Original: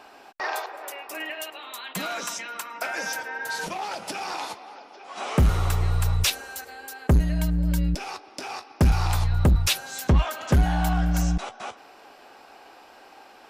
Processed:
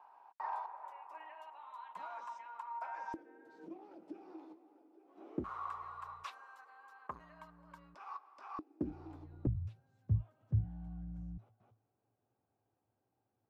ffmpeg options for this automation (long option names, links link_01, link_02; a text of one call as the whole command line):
ffmpeg -i in.wav -af "asetnsamples=nb_out_samples=441:pad=0,asendcmd='3.14 bandpass f 320;5.44 bandpass f 1100;8.59 bandpass f 310;9.47 bandpass f 110',bandpass=frequency=950:width_type=q:width=11:csg=0" out.wav